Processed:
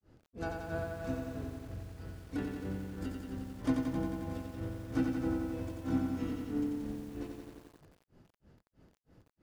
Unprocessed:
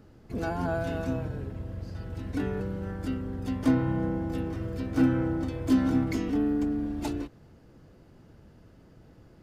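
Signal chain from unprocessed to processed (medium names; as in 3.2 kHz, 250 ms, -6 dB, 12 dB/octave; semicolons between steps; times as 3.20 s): granulator 253 ms, grains 3.1 per s, spray 17 ms, pitch spread up and down by 0 st; bit-crushed delay 89 ms, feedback 80%, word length 9-bit, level -4 dB; trim -5.5 dB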